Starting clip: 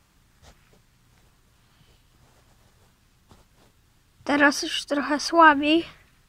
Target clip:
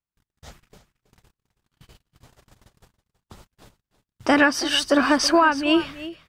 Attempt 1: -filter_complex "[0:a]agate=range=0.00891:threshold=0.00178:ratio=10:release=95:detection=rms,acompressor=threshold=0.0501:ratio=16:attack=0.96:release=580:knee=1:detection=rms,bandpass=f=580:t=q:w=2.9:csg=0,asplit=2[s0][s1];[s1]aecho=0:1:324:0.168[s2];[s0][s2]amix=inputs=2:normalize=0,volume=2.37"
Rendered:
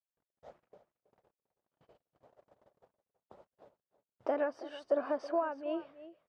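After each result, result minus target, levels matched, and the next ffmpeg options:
compression: peak gain reduction +8.5 dB; 500 Hz band +6.5 dB
-filter_complex "[0:a]agate=range=0.00891:threshold=0.00178:ratio=10:release=95:detection=rms,acompressor=threshold=0.141:ratio=16:attack=0.96:release=580:knee=1:detection=rms,bandpass=f=580:t=q:w=2.9:csg=0,asplit=2[s0][s1];[s1]aecho=0:1:324:0.168[s2];[s0][s2]amix=inputs=2:normalize=0,volume=2.37"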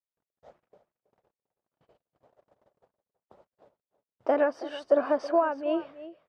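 500 Hz band +6.5 dB
-filter_complex "[0:a]agate=range=0.00891:threshold=0.00178:ratio=10:release=95:detection=rms,acompressor=threshold=0.141:ratio=16:attack=0.96:release=580:knee=1:detection=rms,asplit=2[s0][s1];[s1]aecho=0:1:324:0.168[s2];[s0][s2]amix=inputs=2:normalize=0,volume=2.37"

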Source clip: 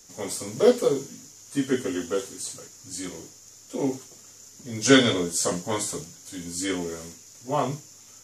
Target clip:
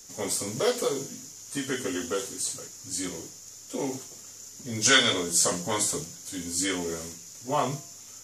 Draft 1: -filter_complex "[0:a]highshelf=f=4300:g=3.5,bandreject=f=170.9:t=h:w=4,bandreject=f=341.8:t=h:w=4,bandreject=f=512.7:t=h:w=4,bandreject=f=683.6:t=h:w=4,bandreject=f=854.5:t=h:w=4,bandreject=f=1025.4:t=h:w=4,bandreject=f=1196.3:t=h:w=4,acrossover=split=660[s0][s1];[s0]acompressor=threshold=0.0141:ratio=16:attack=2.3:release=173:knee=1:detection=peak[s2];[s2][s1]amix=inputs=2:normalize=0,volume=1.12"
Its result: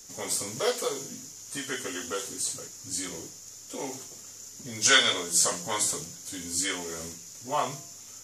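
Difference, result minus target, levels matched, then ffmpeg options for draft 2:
compression: peak gain reduction +8.5 dB
-filter_complex "[0:a]highshelf=f=4300:g=3.5,bandreject=f=170.9:t=h:w=4,bandreject=f=341.8:t=h:w=4,bandreject=f=512.7:t=h:w=4,bandreject=f=683.6:t=h:w=4,bandreject=f=854.5:t=h:w=4,bandreject=f=1025.4:t=h:w=4,bandreject=f=1196.3:t=h:w=4,acrossover=split=660[s0][s1];[s0]acompressor=threshold=0.0398:ratio=16:attack=2.3:release=173:knee=1:detection=peak[s2];[s2][s1]amix=inputs=2:normalize=0,volume=1.12"

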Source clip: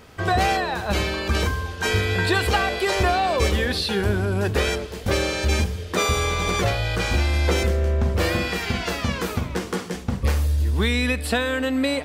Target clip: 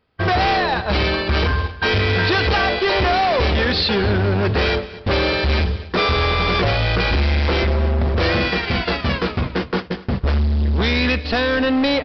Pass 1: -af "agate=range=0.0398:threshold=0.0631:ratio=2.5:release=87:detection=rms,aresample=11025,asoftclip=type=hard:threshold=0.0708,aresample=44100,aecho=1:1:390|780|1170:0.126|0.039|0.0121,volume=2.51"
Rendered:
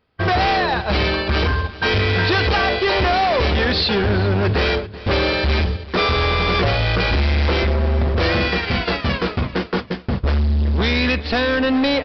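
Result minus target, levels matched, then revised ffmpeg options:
echo 150 ms late
-af "agate=range=0.0398:threshold=0.0631:ratio=2.5:release=87:detection=rms,aresample=11025,asoftclip=type=hard:threshold=0.0708,aresample=44100,aecho=1:1:240|480|720:0.126|0.039|0.0121,volume=2.51"

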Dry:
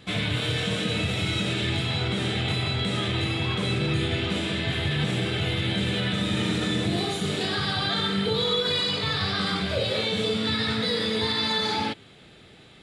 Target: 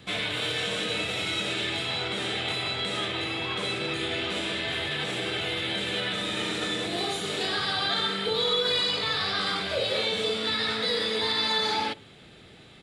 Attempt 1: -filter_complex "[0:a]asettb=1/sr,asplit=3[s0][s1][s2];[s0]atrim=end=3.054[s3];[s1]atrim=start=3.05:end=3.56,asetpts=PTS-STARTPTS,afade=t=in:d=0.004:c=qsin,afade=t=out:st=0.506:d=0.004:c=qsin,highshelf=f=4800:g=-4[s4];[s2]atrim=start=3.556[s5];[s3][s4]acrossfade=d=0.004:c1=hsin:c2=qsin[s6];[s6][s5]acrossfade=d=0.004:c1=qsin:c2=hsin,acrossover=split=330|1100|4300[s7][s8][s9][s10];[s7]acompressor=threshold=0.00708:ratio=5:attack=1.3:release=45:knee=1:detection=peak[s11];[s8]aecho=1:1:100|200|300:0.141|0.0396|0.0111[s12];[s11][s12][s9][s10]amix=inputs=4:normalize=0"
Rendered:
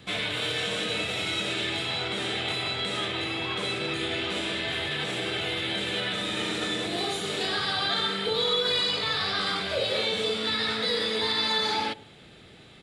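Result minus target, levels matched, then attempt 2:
echo 43 ms late
-filter_complex "[0:a]asettb=1/sr,asplit=3[s0][s1][s2];[s0]atrim=end=3.054[s3];[s1]atrim=start=3.05:end=3.56,asetpts=PTS-STARTPTS,afade=t=in:d=0.004:c=qsin,afade=t=out:st=0.506:d=0.004:c=qsin,highshelf=f=4800:g=-4[s4];[s2]atrim=start=3.556[s5];[s3][s4]acrossfade=d=0.004:c1=hsin:c2=qsin[s6];[s6][s5]acrossfade=d=0.004:c1=qsin:c2=hsin,acrossover=split=330|1100|4300[s7][s8][s9][s10];[s7]acompressor=threshold=0.00708:ratio=5:attack=1.3:release=45:knee=1:detection=peak[s11];[s8]aecho=1:1:57|114|171:0.141|0.0396|0.0111[s12];[s11][s12][s9][s10]amix=inputs=4:normalize=0"

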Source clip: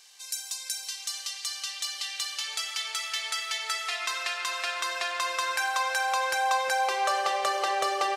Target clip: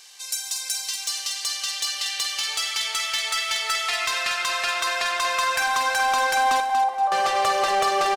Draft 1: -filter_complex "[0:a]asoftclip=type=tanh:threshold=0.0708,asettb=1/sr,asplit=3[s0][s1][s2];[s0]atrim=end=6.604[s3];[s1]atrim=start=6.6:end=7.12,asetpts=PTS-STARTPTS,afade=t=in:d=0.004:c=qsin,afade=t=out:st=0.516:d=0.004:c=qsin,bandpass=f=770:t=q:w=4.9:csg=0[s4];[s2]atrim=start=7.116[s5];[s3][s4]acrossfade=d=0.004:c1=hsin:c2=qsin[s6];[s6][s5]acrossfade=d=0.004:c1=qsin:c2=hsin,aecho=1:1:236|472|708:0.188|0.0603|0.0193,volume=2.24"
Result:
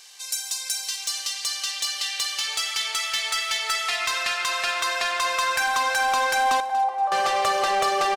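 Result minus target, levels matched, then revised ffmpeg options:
echo-to-direct -7 dB
-filter_complex "[0:a]asoftclip=type=tanh:threshold=0.0708,asettb=1/sr,asplit=3[s0][s1][s2];[s0]atrim=end=6.604[s3];[s1]atrim=start=6.6:end=7.12,asetpts=PTS-STARTPTS,afade=t=in:d=0.004:c=qsin,afade=t=out:st=0.516:d=0.004:c=qsin,bandpass=f=770:t=q:w=4.9:csg=0[s4];[s2]atrim=start=7.116[s5];[s3][s4]acrossfade=d=0.004:c1=hsin:c2=qsin[s6];[s6][s5]acrossfade=d=0.004:c1=qsin:c2=hsin,aecho=1:1:236|472|708|944:0.422|0.135|0.0432|0.0138,volume=2.24"

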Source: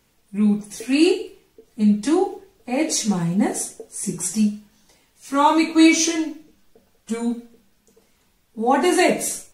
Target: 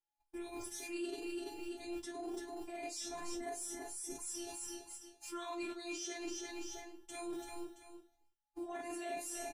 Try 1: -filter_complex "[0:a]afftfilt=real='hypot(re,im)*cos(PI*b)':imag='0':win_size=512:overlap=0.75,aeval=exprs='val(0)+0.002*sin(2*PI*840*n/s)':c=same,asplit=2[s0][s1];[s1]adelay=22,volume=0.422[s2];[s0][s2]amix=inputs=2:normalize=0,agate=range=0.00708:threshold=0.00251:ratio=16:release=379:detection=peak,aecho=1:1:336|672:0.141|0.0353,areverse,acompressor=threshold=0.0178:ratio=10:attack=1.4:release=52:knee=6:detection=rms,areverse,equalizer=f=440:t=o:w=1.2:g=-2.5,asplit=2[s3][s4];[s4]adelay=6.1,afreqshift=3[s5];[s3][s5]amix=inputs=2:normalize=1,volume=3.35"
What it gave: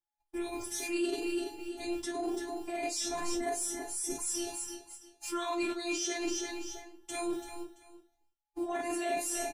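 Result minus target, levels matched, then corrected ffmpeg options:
compression: peak gain reduction -9 dB
-filter_complex "[0:a]afftfilt=real='hypot(re,im)*cos(PI*b)':imag='0':win_size=512:overlap=0.75,aeval=exprs='val(0)+0.002*sin(2*PI*840*n/s)':c=same,asplit=2[s0][s1];[s1]adelay=22,volume=0.422[s2];[s0][s2]amix=inputs=2:normalize=0,agate=range=0.00708:threshold=0.00251:ratio=16:release=379:detection=peak,aecho=1:1:336|672:0.141|0.0353,areverse,acompressor=threshold=0.00562:ratio=10:attack=1.4:release=52:knee=6:detection=rms,areverse,equalizer=f=440:t=o:w=1.2:g=-2.5,asplit=2[s3][s4];[s4]adelay=6.1,afreqshift=3[s5];[s3][s5]amix=inputs=2:normalize=1,volume=3.35"

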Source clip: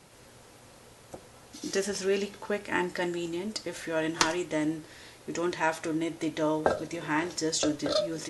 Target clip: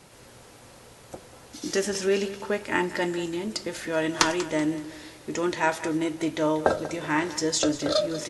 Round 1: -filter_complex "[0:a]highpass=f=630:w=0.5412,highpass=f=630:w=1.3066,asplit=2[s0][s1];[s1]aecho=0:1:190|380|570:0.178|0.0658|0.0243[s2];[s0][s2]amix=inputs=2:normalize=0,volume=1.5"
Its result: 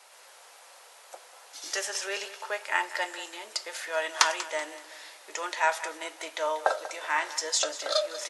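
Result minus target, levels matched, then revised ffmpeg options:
500 Hz band -3.5 dB
-filter_complex "[0:a]asplit=2[s0][s1];[s1]aecho=0:1:190|380|570:0.178|0.0658|0.0243[s2];[s0][s2]amix=inputs=2:normalize=0,volume=1.5"

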